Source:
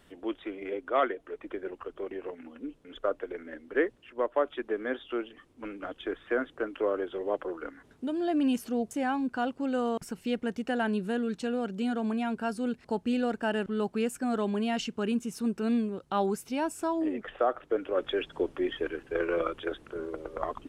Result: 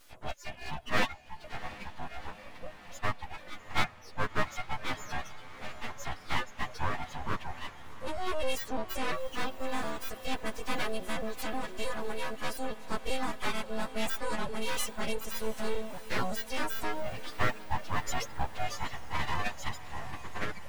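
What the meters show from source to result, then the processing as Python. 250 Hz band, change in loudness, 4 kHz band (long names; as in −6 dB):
−11.5 dB, −4.5 dB, +4.0 dB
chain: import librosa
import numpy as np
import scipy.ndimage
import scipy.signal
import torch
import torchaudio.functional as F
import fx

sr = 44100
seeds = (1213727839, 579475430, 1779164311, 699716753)

p1 = fx.freq_snap(x, sr, grid_st=3)
p2 = np.abs(p1)
p3 = fx.dereverb_blind(p2, sr, rt60_s=0.74)
y = p3 + fx.echo_diffused(p3, sr, ms=713, feedback_pct=68, wet_db=-15, dry=0)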